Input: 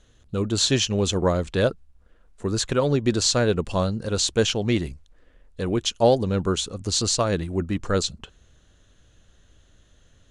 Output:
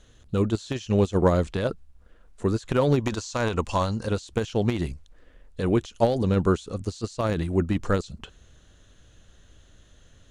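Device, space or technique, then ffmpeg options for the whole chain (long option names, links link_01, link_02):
de-esser from a sidechain: -filter_complex "[0:a]asplit=2[link_01][link_02];[link_02]highpass=6700,apad=whole_len=454269[link_03];[link_01][link_03]sidechaincompress=threshold=-49dB:ratio=8:attack=0.67:release=31,asettb=1/sr,asplit=3[link_04][link_05][link_06];[link_04]atrim=end=3.004[link_07];[link_05]atrim=start=3:end=4.06,asetpts=PTS-STARTPTS,afade=type=in:duration=0.004:curve=qsin,afade=type=out:start_time=1.056:duration=0.004:curve=qsin,equalizer=frequency=160:width_type=o:width=0.67:gain=-7,equalizer=frequency=400:width_type=o:width=0.67:gain=-4,equalizer=frequency=1000:width_type=o:width=0.67:gain=8,equalizer=frequency=2500:width_type=o:width=0.67:gain=3,equalizer=frequency=6300:width_type=o:width=0.67:gain=9[link_08];[link_06]atrim=start=4.056[link_09];[link_07][link_08]acrossfade=duration=0.004:curve1=hsin:curve2=qsin[link_10];[link_10][link_09]acrossfade=duration=0.004:curve1=qsin:curve2=hsin,volume=2.5dB"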